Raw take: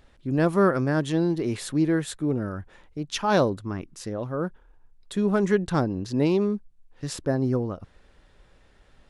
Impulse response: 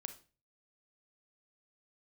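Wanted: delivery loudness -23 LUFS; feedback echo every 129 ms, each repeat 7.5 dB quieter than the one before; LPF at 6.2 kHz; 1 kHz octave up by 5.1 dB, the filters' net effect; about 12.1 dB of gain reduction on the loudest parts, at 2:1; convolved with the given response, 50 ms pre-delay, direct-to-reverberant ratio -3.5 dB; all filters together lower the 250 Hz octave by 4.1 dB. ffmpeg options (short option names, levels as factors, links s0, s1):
-filter_complex "[0:a]lowpass=6200,equalizer=f=250:t=o:g=-6.5,equalizer=f=1000:t=o:g=7,acompressor=threshold=0.0126:ratio=2,aecho=1:1:129|258|387|516|645:0.422|0.177|0.0744|0.0312|0.0131,asplit=2[s0][s1];[1:a]atrim=start_sample=2205,adelay=50[s2];[s1][s2]afir=irnorm=-1:irlink=0,volume=2.24[s3];[s0][s3]amix=inputs=2:normalize=0,volume=2.37"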